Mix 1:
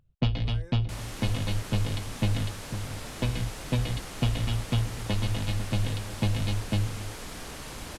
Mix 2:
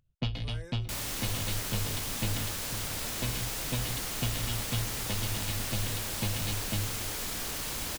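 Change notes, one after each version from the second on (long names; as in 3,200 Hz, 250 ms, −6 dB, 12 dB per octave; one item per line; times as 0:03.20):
first sound −7.0 dB
second sound: remove low-pass filter 12,000 Hz 24 dB per octave
master: add high-shelf EQ 2,500 Hz +8.5 dB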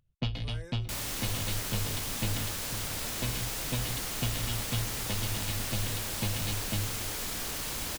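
nothing changed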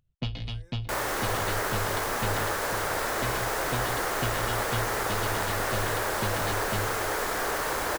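speech −11.0 dB
second sound: add flat-topped bell 810 Hz +14.5 dB 2.8 octaves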